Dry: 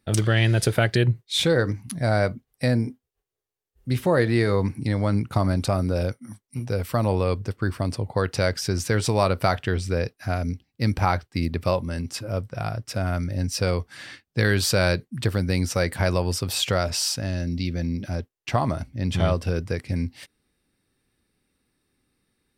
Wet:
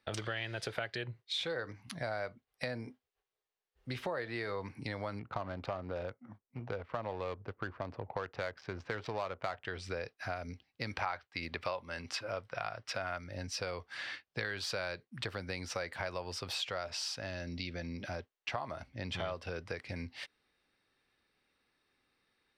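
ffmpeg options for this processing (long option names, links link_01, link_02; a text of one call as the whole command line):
ffmpeg -i in.wav -filter_complex "[0:a]asettb=1/sr,asplit=3[link_01][link_02][link_03];[link_01]atrim=end=5.194[link_04];[link_02]atrim=start=5.19:end=9.65,asetpts=PTS-STARTPTS,afade=type=in:duration=0.004:curve=qsin,afade=type=out:start_time=4.456:duration=0.004:curve=qsin,adynamicsmooth=sensitivity=2.5:basefreq=880[link_05];[link_03]atrim=start=9.646[link_06];[link_04][link_05]acrossfade=duration=0.004:curve1=hsin:curve2=qsin[link_07];[link_07][link_06]acrossfade=duration=0.004:curve1=qsin:curve2=hsin,asettb=1/sr,asplit=3[link_08][link_09][link_10];[link_08]atrim=end=10.904[link_11];[link_09]atrim=start=10.9:end=13.18,asetpts=PTS-STARTPTS,afade=type=in:duration=0.004:curve=qsin,afade=type=out:start_time=2.276:duration=0.004:curve=qsin,equalizer=frequency=2000:width=0.31:gain=7[link_12];[link_10]atrim=start=13.176[link_13];[link_11][link_12]acrossfade=duration=0.004:curve1=hsin:curve2=qsin[link_14];[link_14][link_13]acrossfade=duration=0.004:curve1=qsin:curve2=hsin,acrossover=split=490 5200:gain=0.2 1 0.126[link_15][link_16][link_17];[link_15][link_16][link_17]amix=inputs=3:normalize=0,acompressor=threshold=-38dB:ratio=4,volume=1dB" out.wav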